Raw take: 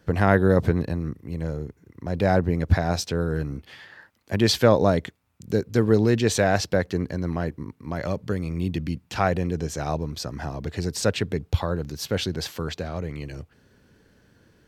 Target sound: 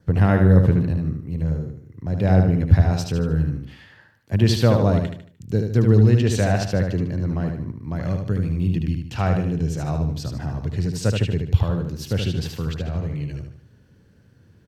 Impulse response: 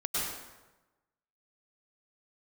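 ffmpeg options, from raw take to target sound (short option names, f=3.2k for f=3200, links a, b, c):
-filter_complex "[0:a]equalizer=f=110:t=o:w=2:g=12.5,asplit=2[a][b];[b]aecho=0:1:75|150|225|300|375:0.562|0.219|0.0855|0.0334|0.013[c];[a][c]amix=inputs=2:normalize=0,adynamicequalizer=threshold=0.002:dfrequency=2800:dqfactor=7.3:tfrequency=2800:tqfactor=7.3:attack=5:release=100:ratio=0.375:range=4:mode=boostabove:tftype=bell,volume=-5dB"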